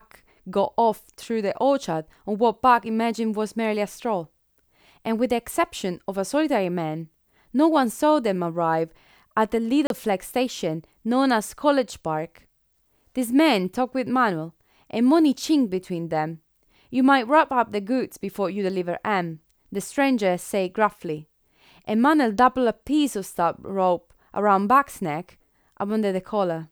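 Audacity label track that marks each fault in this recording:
9.870000	9.900000	drop-out 32 ms

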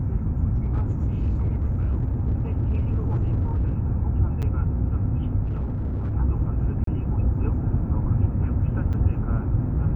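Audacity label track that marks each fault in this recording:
0.540000	3.740000	clipping −19 dBFS
4.420000	4.430000	drop-out 7.1 ms
5.440000	6.140000	clipping −23 dBFS
6.840000	6.870000	drop-out 33 ms
8.930000	8.940000	drop-out 6.1 ms

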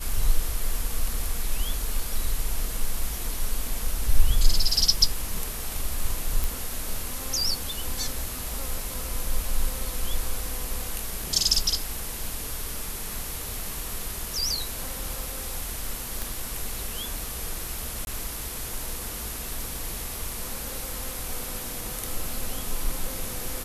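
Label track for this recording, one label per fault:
6.440000	6.440000	click
16.220000	16.220000	click
18.050000	18.070000	drop-out 21 ms

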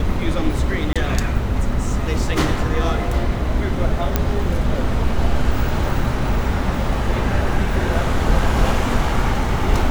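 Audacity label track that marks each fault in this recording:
0.930000	0.960000	drop-out 26 ms
4.160000	4.160000	click −3 dBFS

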